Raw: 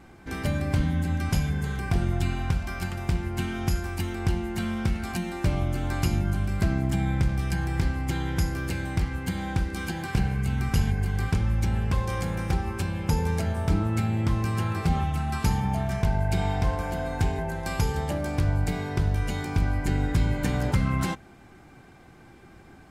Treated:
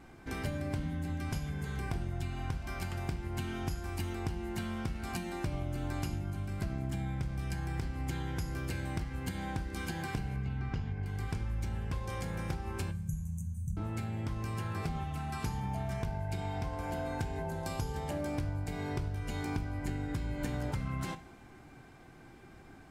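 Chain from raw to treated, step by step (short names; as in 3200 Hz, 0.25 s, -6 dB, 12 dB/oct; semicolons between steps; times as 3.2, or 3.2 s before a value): 17.42–17.95 bell 2000 Hz -6 dB 0.83 oct; compressor, threshold -28 dBFS, peak gain reduction 10 dB; 10.36–11.06 air absorption 190 m; 12.91–13.77 brick-wall FIR band-stop 210–5900 Hz; two-slope reverb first 0.39 s, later 2.6 s, from -18 dB, DRR 10.5 dB; gain -4 dB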